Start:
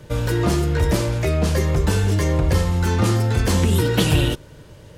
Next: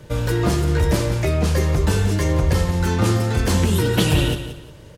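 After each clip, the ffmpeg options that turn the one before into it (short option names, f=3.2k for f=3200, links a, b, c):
-af "aecho=1:1:178|356|534:0.282|0.0789|0.0221"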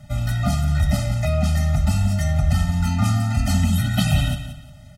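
-af "afftfilt=real='re*eq(mod(floor(b*sr/1024/300),2),0)':imag='im*eq(mod(floor(b*sr/1024/300),2),0)':win_size=1024:overlap=0.75"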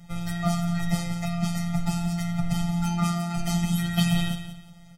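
-af "afftfilt=real='hypot(re,im)*cos(PI*b)':imag='0':win_size=1024:overlap=0.75"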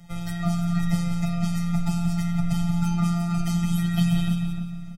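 -filter_complex "[0:a]acrossover=split=410[a][b];[b]acompressor=threshold=-36dB:ratio=2[c];[a][c]amix=inputs=2:normalize=0,asplit=2[d][e];[e]adelay=301,lowpass=f=1.4k:p=1,volume=-5.5dB,asplit=2[f][g];[g]adelay=301,lowpass=f=1.4k:p=1,volume=0.38,asplit=2[h][i];[i]adelay=301,lowpass=f=1.4k:p=1,volume=0.38,asplit=2[j][k];[k]adelay=301,lowpass=f=1.4k:p=1,volume=0.38,asplit=2[l][m];[m]adelay=301,lowpass=f=1.4k:p=1,volume=0.38[n];[d][f][h][j][l][n]amix=inputs=6:normalize=0"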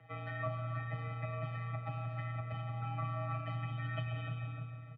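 -af "acompressor=threshold=-23dB:ratio=6,highpass=f=230:t=q:w=0.5412,highpass=f=230:t=q:w=1.307,lowpass=f=2.7k:t=q:w=0.5176,lowpass=f=2.7k:t=q:w=0.7071,lowpass=f=2.7k:t=q:w=1.932,afreqshift=-54,volume=-2dB"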